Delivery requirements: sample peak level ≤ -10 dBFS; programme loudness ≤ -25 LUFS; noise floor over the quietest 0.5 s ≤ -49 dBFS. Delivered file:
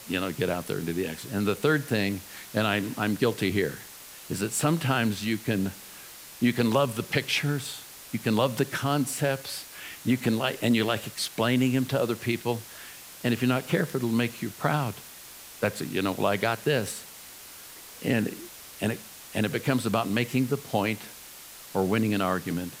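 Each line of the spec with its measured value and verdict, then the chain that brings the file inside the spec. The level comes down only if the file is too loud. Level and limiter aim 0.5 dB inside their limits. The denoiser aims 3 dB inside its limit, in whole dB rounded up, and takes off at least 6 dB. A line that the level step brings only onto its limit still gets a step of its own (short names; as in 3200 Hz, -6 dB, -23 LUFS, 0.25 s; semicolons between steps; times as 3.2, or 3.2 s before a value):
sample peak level -7.0 dBFS: fail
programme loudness -27.5 LUFS: OK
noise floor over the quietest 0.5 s -46 dBFS: fail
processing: denoiser 6 dB, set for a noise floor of -46 dBFS; limiter -10.5 dBFS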